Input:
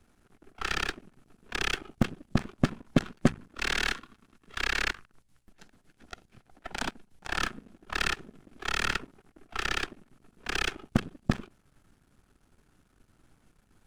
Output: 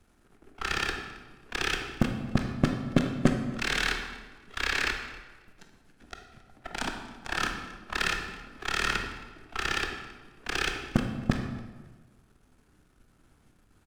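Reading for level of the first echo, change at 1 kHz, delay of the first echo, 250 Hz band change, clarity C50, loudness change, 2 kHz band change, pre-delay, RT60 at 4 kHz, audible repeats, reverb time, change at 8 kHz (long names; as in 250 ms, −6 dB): −22.0 dB, +1.5 dB, 271 ms, +2.0 dB, 6.0 dB, +1.0 dB, +1.5 dB, 19 ms, 1.1 s, 2, 1.3 s, +1.0 dB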